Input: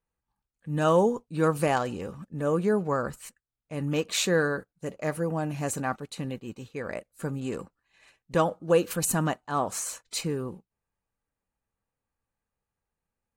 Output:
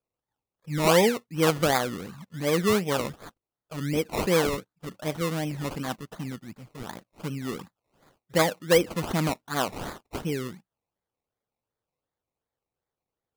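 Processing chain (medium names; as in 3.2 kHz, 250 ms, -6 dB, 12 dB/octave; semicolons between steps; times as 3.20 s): high-pass 120 Hz; touch-sensitive phaser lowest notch 220 Hz, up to 4.6 kHz, full sweep at -20.5 dBFS; decimation with a swept rate 22×, swing 60% 2.7 Hz; trim +2 dB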